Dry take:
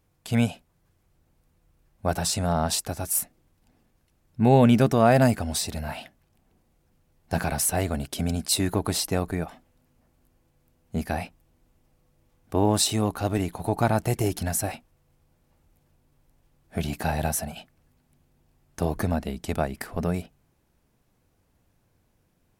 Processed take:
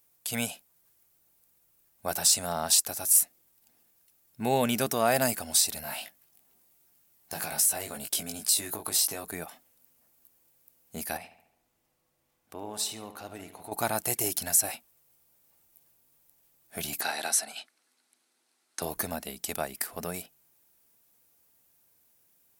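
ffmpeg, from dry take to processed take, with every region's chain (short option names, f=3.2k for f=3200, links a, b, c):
-filter_complex "[0:a]asettb=1/sr,asplit=3[a][b][c];[a]atrim=end=5.824[d];[b]atrim=start=5.82:end=9.25,asetpts=PTS-STARTPTS,afade=t=in:d=0.004:c=qsin,afade=t=out:st=3.426:d=0.004:c=qsin,asplit=2[e][f];[f]adelay=19,volume=-4dB[g];[e][g]amix=inputs=2:normalize=0,atrim=end_sample=151263,acompressor=threshold=-26dB:ratio=4:attack=3.2:release=140:knee=1:detection=peak[h];[c]atrim=start=9.246[i];[d][h]acrossfade=d=0.004:c1=hsin:c2=qsin[j];[j][i]acrossfade=d=0.004:c1=qsin:c2=hsin,asettb=1/sr,asplit=3[k][l][m];[k]atrim=end=11.174[n];[l]atrim=start=11.17:end=13.72,asetpts=PTS-STARTPTS,afade=t=in:d=0.004:c=qsin,afade=t=out:st=2.546:d=0.004:c=qsin,aemphasis=mode=reproduction:type=50kf,acompressor=threshold=-44dB:ratio=1.5:attack=3.2:release=140:knee=1:detection=peak,asplit=2[o][p];[p]adelay=71,lowpass=f=3.4k:p=1,volume=-10dB,asplit=2[q][r];[r]adelay=71,lowpass=f=3.4k:p=1,volume=0.55,asplit=2[s][t];[t]adelay=71,lowpass=f=3.4k:p=1,volume=0.55,asplit=2[u][v];[v]adelay=71,lowpass=f=3.4k:p=1,volume=0.55,asplit=2[w][x];[x]adelay=71,lowpass=f=3.4k:p=1,volume=0.55,asplit=2[y][z];[z]adelay=71,lowpass=f=3.4k:p=1,volume=0.55[aa];[o][q][s][u][w][y][aa]amix=inputs=7:normalize=0,atrim=end_sample=112455[ab];[m]atrim=start=13.716[ac];[n][ab]acrossfade=d=0.004:c1=hsin:c2=qsin[ad];[ad][ac]acrossfade=d=0.004:c1=qsin:c2=hsin,asettb=1/sr,asplit=3[ae][af][ag];[ae]atrim=end=17.014[ah];[af]atrim=start=17.01:end=18.82,asetpts=PTS-STARTPTS,afade=t=in:d=0.004:c=qsin,afade=t=out:st=1.806:d=0.004:c=qsin,highpass=f=250:w=0.5412,highpass=f=250:w=1.3066,equalizer=f=550:t=q:w=4:g=-5,equalizer=f=1.4k:t=q:w=4:g=6,equalizer=f=2.1k:t=q:w=4:g=4,equalizer=f=4.1k:t=q:w=4:g=7,lowpass=f=9.6k:w=0.5412,lowpass=f=9.6k:w=1.3066,bandreject=f=7.1k:w=16[ai];[ag]atrim=start=18.816[aj];[ah][ai]acrossfade=d=0.004:c1=hsin:c2=qsin[ak];[ak][aj]acrossfade=d=0.004:c1=qsin:c2=hsin,acrossover=split=8900[al][am];[am]acompressor=threshold=-38dB:ratio=4:attack=1:release=60[an];[al][an]amix=inputs=2:normalize=0,aemphasis=mode=production:type=riaa,volume=-4.5dB"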